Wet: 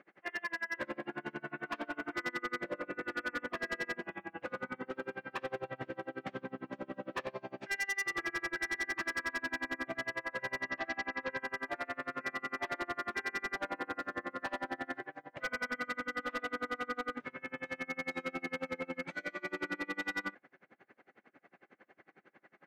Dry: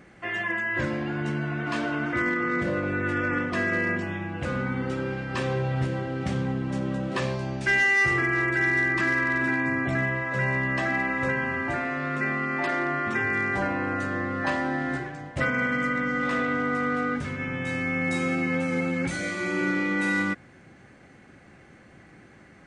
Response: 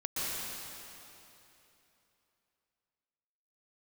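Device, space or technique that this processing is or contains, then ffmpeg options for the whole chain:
helicopter radio: -filter_complex "[0:a]highpass=370,lowpass=2.5k,aeval=exprs='val(0)*pow(10,-31*(0.5-0.5*cos(2*PI*11*n/s))/20)':c=same,asoftclip=type=hard:threshold=-29.5dB,asettb=1/sr,asplit=3[a][b][c];[a]atrim=end=10.634[d];[b]atrim=start=10.63:end=11.37,asetpts=PTS-STARTPTS,afade=t=in:d=0.004:c=qsin,afade=t=out:st=0.736:d=0.004:c=qsin,lowpass=f=6.1k:w=0.5412,lowpass=f=6.1k:w=1.3066[e];[c]atrim=start=11.366[f];[d][e]acrossfade=d=0.004:c1=hsin:c2=qsin[g];[g][f]acrossfade=d=0.004:c1=qsin:c2=hsin,volume=-1.5dB"

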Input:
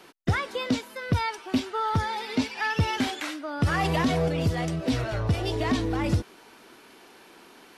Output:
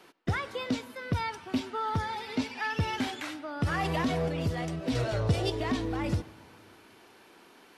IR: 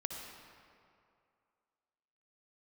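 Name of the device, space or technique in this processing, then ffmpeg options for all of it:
filtered reverb send: -filter_complex "[0:a]asettb=1/sr,asplit=3[a][b][c];[a]atrim=end=4.954[d];[b]atrim=start=4.95:end=5.5,asetpts=PTS-STARTPTS,afade=t=in:d=0.004:c=qsin,afade=t=out:st=0.546:d=0.004:c=qsin,equalizer=f=125:t=o:w=1:g=5,equalizer=f=500:t=o:w=1:g=7,equalizer=f=4k:t=o:w=1:g=5,equalizer=f=8k:t=o:w=1:g=8[e];[c]atrim=start=5.496[f];[d][e]acrossfade=d=0.004:c1=hsin:c2=qsin[g];[g][f]acrossfade=d=0.004:c1=qsin:c2=hsin,asplit=2[h][i];[i]highpass=f=160:p=1,lowpass=4.5k[j];[1:a]atrim=start_sample=2205[k];[j][k]afir=irnorm=-1:irlink=0,volume=-12dB[l];[h][l]amix=inputs=2:normalize=0,volume=-6dB"

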